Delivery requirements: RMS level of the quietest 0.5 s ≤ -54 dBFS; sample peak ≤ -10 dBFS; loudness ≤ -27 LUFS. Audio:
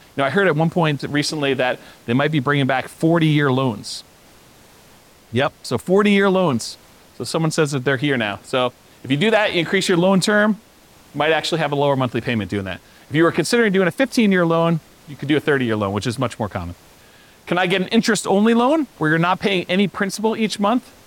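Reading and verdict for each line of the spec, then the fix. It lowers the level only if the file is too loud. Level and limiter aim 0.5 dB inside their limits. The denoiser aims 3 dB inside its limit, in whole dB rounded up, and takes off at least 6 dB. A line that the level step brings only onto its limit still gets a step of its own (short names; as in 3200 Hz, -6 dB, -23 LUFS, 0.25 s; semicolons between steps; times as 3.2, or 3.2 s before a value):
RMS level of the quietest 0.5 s -49 dBFS: fail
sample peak -5.5 dBFS: fail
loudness -18.5 LUFS: fail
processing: gain -9 dB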